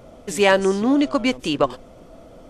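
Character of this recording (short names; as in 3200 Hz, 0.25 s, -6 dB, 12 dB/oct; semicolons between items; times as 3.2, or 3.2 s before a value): noise floor -46 dBFS; spectral tilt -3.5 dB/oct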